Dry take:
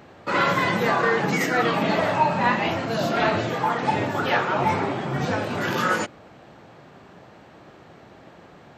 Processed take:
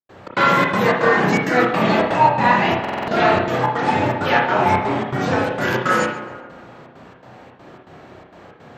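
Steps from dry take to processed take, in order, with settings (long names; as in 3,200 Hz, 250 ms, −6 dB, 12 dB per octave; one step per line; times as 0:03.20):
gate pattern ".xx.xxx.xx.xxxx" 164 BPM −60 dB
tape delay 137 ms, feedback 64%, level −10 dB, low-pass 2,500 Hz
on a send at −1 dB: convolution reverb, pre-delay 32 ms
on the sum: buffer that repeats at 0:02.80, samples 2,048, times 5
level +3 dB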